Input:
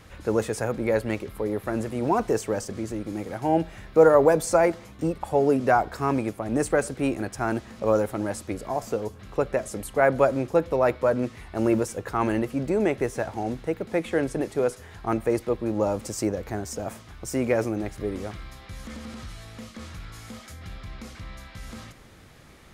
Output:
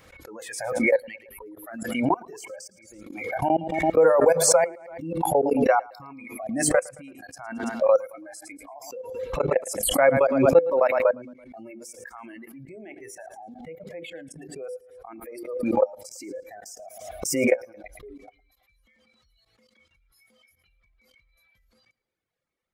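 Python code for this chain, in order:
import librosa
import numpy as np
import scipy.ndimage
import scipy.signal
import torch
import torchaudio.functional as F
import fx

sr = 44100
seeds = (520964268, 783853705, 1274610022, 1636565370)

p1 = fx.dereverb_blind(x, sr, rt60_s=1.7)
p2 = fx.hum_notches(p1, sr, base_hz=50, count=10)
p3 = fx.noise_reduce_blind(p2, sr, reduce_db=23)
p4 = fx.low_shelf(p3, sr, hz=170.0, db=-7.5)
p5 = fx.level_steps(p4, sr, step_db=23)
p6 = fx.small_body(p5, sr, hz=(510.0, 2200.0), ring_ms=70, db=10)
p7 = p6 + fx.echo_feedback(p6, sr, ms=111, feedback_pct=42, wet_db=-23.5, dry=0)
p8 = fx.pre_swell(p7, sr, db_per_s=49.0)
y = p8 * 10.0 ** (3.5 / 20.0)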